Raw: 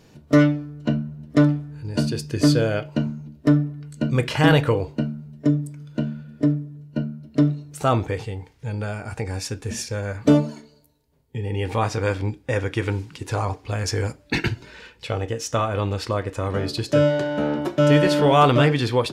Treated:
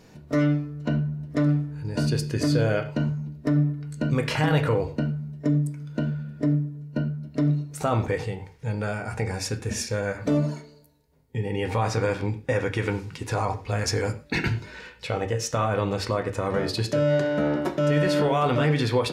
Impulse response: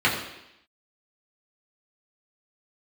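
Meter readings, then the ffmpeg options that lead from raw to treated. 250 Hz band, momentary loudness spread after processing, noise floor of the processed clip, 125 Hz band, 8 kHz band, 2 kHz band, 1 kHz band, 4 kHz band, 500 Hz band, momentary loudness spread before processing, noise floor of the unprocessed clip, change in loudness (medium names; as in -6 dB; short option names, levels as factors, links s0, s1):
-4.5 dB, 8 LU, -51 dBFS, -2.0 dB, -1.0 dB, -2.5 dB, -4.0 dB, -4.0 dB, -3.0 dB, 13 LU, -54 dBFS, -3.5 dB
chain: -filter_complex "[0:a]alimiter=limit=0.168:level=0:latency=1,asplit=2[s0][s1];[1:a]atrim=start_sample=2205,afade=t=out:st=0.17:d=0.01,atrim=end_sample=7938[s2];[s1][s2]afir=irnorm=-1:irlink=0,volume=0.075[s3];[s0][s3]amix=inputs=2:normalize=0"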